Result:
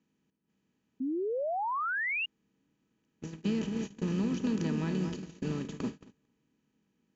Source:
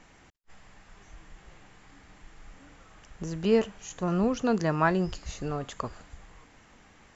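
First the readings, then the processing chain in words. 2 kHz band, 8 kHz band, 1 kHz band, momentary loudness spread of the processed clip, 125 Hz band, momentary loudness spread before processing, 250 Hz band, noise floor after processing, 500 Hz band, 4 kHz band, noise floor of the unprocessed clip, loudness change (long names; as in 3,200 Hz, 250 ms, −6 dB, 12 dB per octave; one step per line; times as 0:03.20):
+2.0 dB, can't be measured, −3.0 dB, 8 LU, −3.0 dB, 13 LU, −2.0 dB, −79 dBFS, −7.0 dB, −1.5 dB, −57 dBFS, −4.5 dB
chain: compressor on every frequency bin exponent 0.4
high-pass filter 160 Hz 6 dB per octave
high-shelf EQ 2,600 Hz −7.5 dB
notch comb filter 700 Hz
feedback echo with a low-pass in the loop 223 ms, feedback 59%, low-pass 1,400 Hz, level −6 dB
noise gate −25 dBFS, range −37 dB
downward compressor 2.5 to 1, threshold −24 dBFS, peak gain reduction 5.5 dB
flat-topped bell 860 Hz −15 dB 2.4 octaves
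notch filter 1,100 Hz, Q 11
sound drawn into the spectrogram rise, 0:01.00–0:02.26, 250–2,900 Hz −32 dBFS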